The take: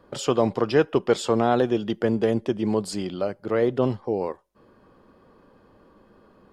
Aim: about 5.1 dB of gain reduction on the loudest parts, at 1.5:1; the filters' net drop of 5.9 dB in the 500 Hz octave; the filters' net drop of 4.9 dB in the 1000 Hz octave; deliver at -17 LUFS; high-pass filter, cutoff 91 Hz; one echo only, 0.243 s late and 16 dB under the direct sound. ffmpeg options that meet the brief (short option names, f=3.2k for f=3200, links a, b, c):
-af "highpass=91,equalizer=f=500:t=o:g=-6.5,equalizer=f=1k:t=o:g=-4,acompressor=threshold=-34dB:ratio=1.5,aecho=1:1:243:0.158,volume=15.5dB"